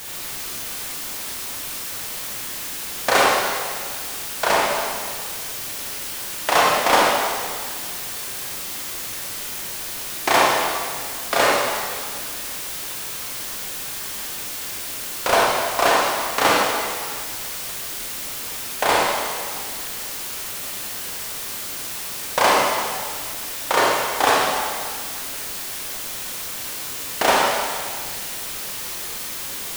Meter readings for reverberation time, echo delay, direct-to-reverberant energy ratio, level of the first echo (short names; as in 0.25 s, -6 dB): 1.9 s, none, -4.5 dB, none